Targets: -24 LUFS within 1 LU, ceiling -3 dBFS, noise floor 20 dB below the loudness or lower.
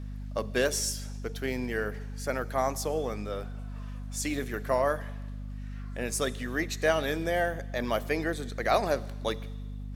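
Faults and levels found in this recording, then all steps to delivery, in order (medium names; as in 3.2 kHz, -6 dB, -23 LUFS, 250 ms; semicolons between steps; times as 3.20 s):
hum 50 Hz; highest harmonic 250 Hz; hum level -35 dBFS; loudness -31.0 LUFS; peak level -11.0 dBFS; loudness target -24.0 LUFS
-> de-hum 50 Hz, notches 5; trim +7 dB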